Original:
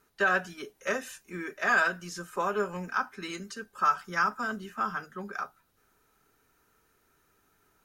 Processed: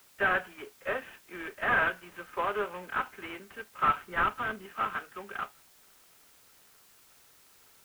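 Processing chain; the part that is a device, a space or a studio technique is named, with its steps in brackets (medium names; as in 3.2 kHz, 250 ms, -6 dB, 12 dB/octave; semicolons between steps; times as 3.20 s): army field radio (band-pass 390–3300 Hz; CVSD coder 16 kbps; white noise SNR 26 dB); 4.02–4.66 s: bass shelf 200 Hz +7.5 dB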